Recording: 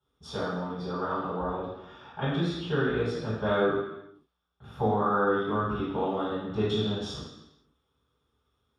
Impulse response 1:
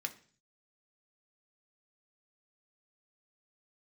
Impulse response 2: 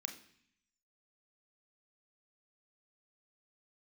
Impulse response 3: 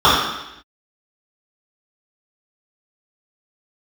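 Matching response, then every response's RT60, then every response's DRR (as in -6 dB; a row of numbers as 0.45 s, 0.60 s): 3; 0.45 s, 0.60 s, 0.85 s; 5.0 dB, 4.0 dB, -11.5 dB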